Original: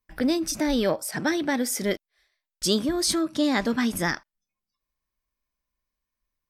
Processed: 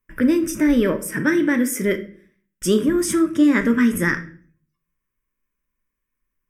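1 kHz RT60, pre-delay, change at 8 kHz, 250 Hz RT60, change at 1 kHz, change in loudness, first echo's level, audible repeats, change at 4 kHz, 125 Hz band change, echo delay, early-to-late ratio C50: 0.45 s, 5 ms, +1.0 dB, 0.65 s, -0.5 dB, +6.0 dB, none, none, -6.0 dB, +7.0 dB, none, 13.5 dB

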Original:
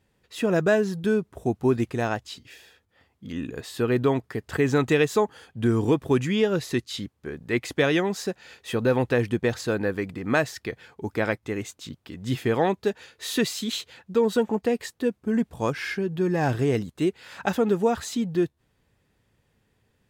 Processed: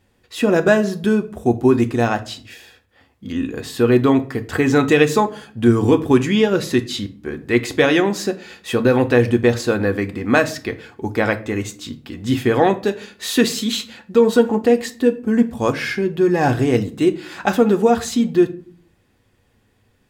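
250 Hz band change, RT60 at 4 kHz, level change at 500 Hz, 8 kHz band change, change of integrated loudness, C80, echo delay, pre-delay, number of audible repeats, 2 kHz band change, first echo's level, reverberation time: +8.5 dB, 0.30 s, +7.5 dB, +7.0 dB, +7.5 dB, 21.0 dB, none, 3 ms, none, +7.0 dB, none, 0.45 s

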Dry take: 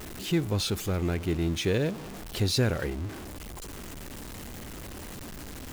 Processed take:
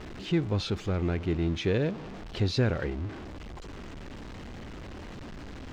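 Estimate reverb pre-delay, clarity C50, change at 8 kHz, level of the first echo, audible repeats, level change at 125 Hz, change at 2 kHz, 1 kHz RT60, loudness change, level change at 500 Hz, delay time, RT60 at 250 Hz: none, none, -12.5 dB, none, none, 0.0 dB, -1.5 dB, none, +0.5 dB, -0.5 dB, none, none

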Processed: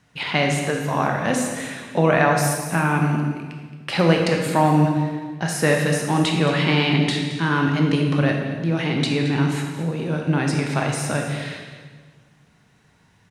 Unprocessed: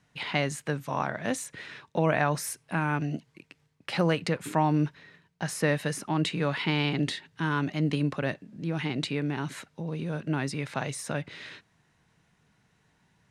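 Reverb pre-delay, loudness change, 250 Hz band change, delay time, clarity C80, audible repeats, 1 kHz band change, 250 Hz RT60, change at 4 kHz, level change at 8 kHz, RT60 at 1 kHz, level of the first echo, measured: 17 ms, +9.0 dB, +9.0 dB, 0.221 s, 5.0 dB, 1, +9.0 dB, 1.9 s, +9.0 dB, +8.5 dB, 1.4 s, -13.5 dB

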